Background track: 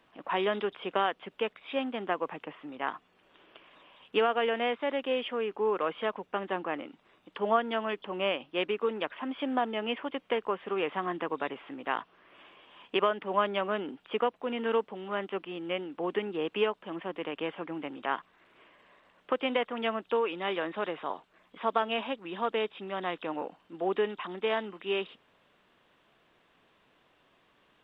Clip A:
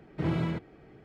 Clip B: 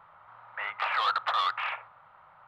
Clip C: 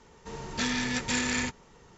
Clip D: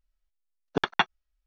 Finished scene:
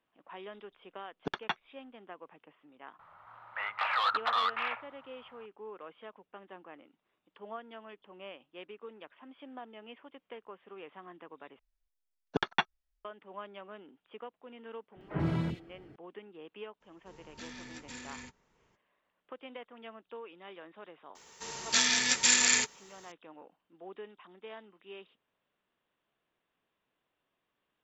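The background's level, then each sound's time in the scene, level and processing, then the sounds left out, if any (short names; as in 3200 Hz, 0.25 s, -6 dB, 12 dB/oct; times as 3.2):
background track -17 dB
0.5 add D -10.5 dB
2.99 add B -2 dB
11.59 replace with D -5 dB + notch 1300 Hz, Q 25
14.92 add A -1.5 dB + three bands offset in time mids, lows, highs 40/90 ms, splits 400/2400 Hz
16.8 add C -17.5 dB, fades 0.02 s
21.15 add C -1.5 dB + tilt +4 dB/oct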